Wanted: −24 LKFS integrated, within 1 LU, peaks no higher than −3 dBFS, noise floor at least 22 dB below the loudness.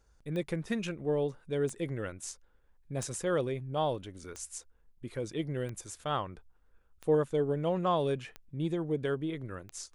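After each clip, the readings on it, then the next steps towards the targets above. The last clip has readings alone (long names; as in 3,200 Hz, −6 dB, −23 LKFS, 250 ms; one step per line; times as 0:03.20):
number of clicks 8; integrated loudness −34.0 LKFS; sample peak −17.5 dBFS; target loudness −24.0 LKFS
→ click removal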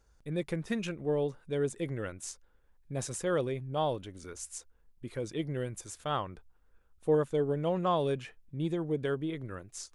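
number of clicks 0; integrated loudness −34.0 LKFS; sample peak −17.5 dBFS; target loudness −24.0 LKFS
→ level +10 dB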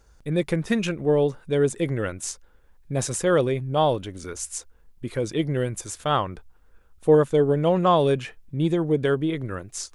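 integrated loudness −24.0 LKFS; sample peak −7.5 dBFS; background noise floor −55 dBFS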